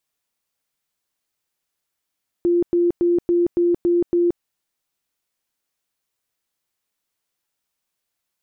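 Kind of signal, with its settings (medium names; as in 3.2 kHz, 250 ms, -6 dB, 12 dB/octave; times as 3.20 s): tone bursts 347 Hz, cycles 61, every 0.28 s, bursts 7, -14 dBFS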